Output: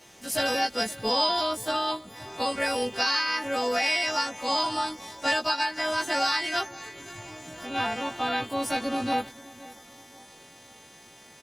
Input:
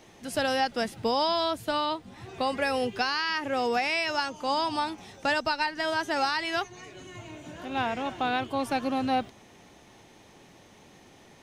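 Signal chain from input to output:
every partial snapped to a pitch grid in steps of 2 semitones
repeating echo 525 ms, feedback 43%, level −20 dB
Opus 16 kbit/s 48,000 Hz

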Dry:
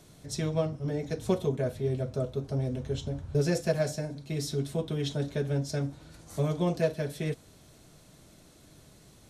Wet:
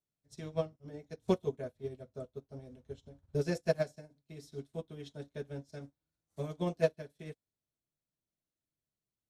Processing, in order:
dynamic equaliser 130 Hz, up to −6 dB, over −44 dBFS, Q 4.6
expander for the loud parts 2.5 to 1, over −49 dBFS

